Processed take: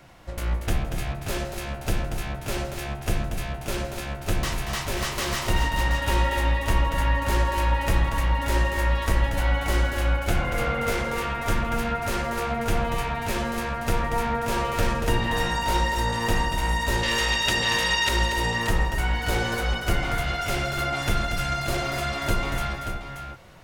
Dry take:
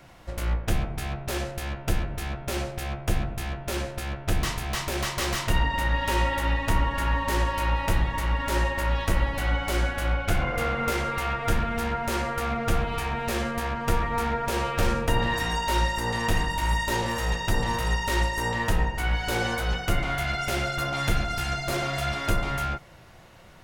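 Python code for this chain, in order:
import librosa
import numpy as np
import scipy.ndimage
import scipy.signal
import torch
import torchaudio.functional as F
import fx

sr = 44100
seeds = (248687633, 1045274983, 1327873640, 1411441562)

p1 = fx.weighting(x, sr, curve='D', at=(17.03, 18.09))
y = p1 + fx.echo_multitap(p1, sr, ms=(164, 235, 581), db=(-19.5, -8.0, -8.5), dry=0)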